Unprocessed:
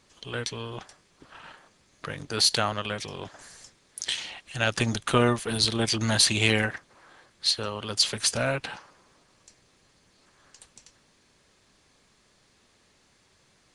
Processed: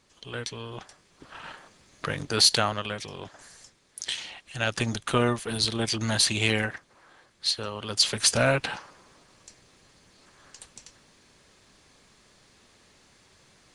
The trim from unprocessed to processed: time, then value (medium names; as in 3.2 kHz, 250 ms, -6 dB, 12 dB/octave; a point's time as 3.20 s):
0.63 s -2.5 dB
1.49 s +5 dB
2.17 s +5 dB
2.99 s -2 dB
7.71 s -2 dB
8.41 s +4.5 dB